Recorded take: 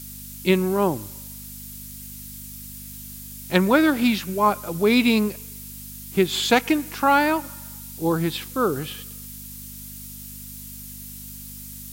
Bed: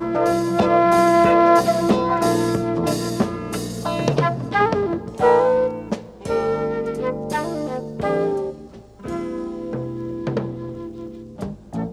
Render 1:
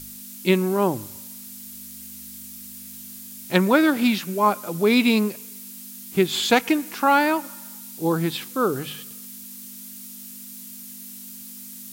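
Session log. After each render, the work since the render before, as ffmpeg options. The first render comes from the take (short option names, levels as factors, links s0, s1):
-af "bandreject=f=50:t=h:w=4,bandreject=f=100:t=h:w=4,bandreject=f=150:t=h:w=4"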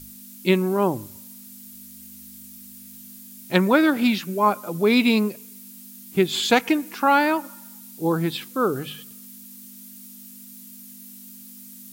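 -af "afftdn=nr=6:nf=-40"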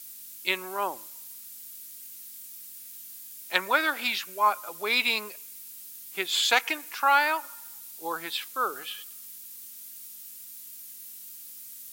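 -af "highpass=960"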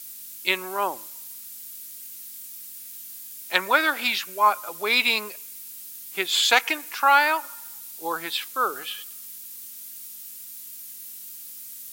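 -af "volume=1.58,alimiter=limit=0.891:level=0:latency=1"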